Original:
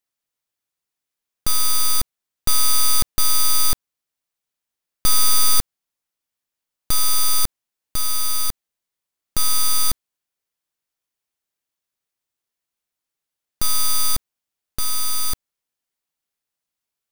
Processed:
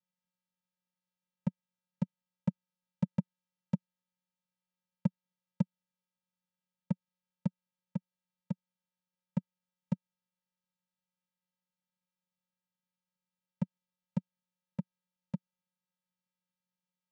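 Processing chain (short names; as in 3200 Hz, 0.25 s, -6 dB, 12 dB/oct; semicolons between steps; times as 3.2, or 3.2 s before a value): minimum comb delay 0.53 ms; vocoder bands 4, square 181 Hz; gain +4.5 dB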